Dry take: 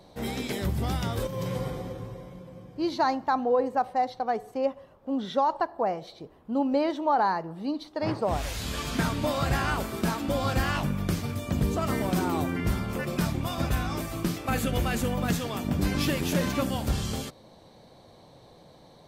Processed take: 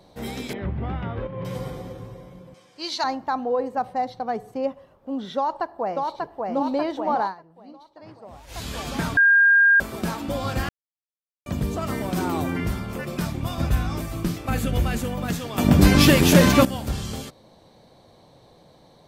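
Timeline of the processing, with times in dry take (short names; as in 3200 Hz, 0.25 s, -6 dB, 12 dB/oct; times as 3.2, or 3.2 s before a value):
0.53–1.45 LPF 2500 Hz 24 dB/oct
2.54–3.04 weighting filter ITU-R 468
3.77–4.75 bell 140 Hz +9.5 dB 1.3 oct
5.37–6.55 echo throw 0.59 s, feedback 75%, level -2.5 dB
7.23–8.59 dip -16.5 dB, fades 0.12 s
9.17–9.8 bleep 1610 Hz -12 dBFS
10.69–11.46 mute
12.17–12.68 fast leveller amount 50%
13.42–14.99 low shelf 150 Hz +8 dB
15.58–16.65 gain +12 dB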